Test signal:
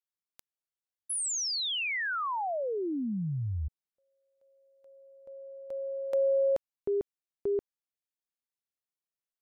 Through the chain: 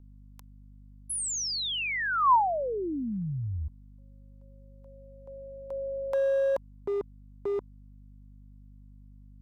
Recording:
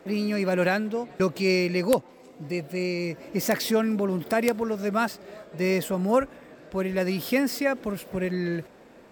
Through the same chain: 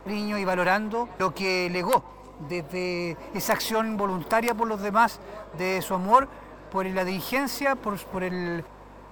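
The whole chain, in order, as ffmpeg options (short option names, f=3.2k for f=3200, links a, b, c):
-filter_complex "[0:a]equalizer=f=1k:w=2.5:g=14,aeval=exprs='val(0)+0.00316*(sin(2*PI*50*n/s)+sin(2*PI*2*50*n/s)/2+sin(2*PI*3*50*n/s)/3+sin(2*PI*4*50*n/s)/4+sin(2*PI*5*50*n/s)/5)':c=same,acrossover=split=630|1800[a][b][c];[a]volume=28dB,asoftclip=hard,volume=-28dB[d];[d][b][c]amix=inputs=3:normalize=0"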